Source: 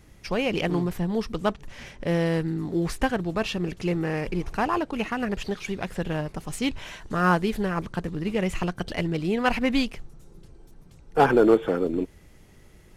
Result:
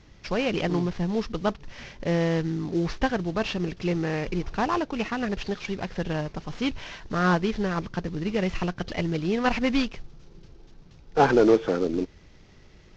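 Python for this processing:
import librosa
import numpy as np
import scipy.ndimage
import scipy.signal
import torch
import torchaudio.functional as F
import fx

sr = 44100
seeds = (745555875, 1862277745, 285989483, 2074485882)

y = fx.cvsd(x, sr, bps=32000)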